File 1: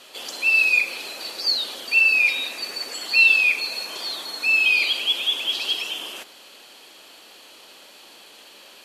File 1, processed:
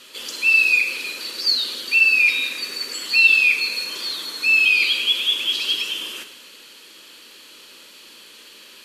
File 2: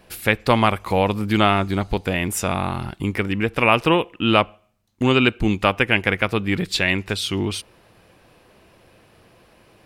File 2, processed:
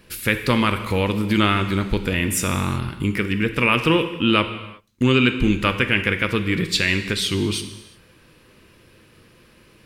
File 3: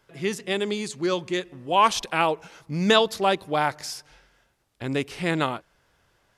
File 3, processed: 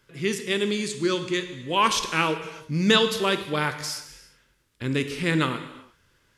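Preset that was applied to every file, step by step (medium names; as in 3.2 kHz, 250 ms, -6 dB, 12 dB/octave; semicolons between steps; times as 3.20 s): peaking EQ 730 Hz -15 dB 0.63 oct; in parallel at -1.5 dB: peak limiter -12 dBFS; on the sum: gated-style reverb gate 400 ms falling, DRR 7.5 dB; trim -3 dB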